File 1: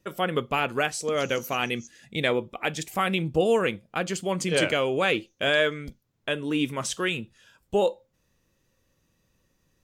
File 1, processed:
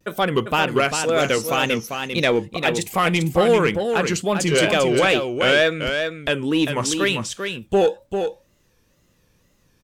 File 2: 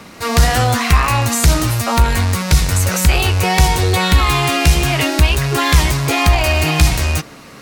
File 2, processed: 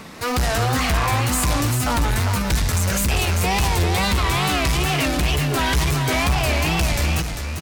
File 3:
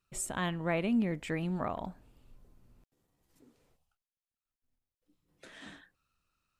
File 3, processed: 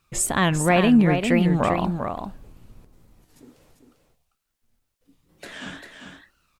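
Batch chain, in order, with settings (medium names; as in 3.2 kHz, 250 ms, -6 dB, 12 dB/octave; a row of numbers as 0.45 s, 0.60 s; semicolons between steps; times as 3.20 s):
saturation -16 dBFS; wow and flutter 140 cents; on a send: delay 396 ms -6.5 dB; on the sum: normalise loudness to -20 LUFS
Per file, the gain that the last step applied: +7.5 dB, -1.0 dB, +13.5 dB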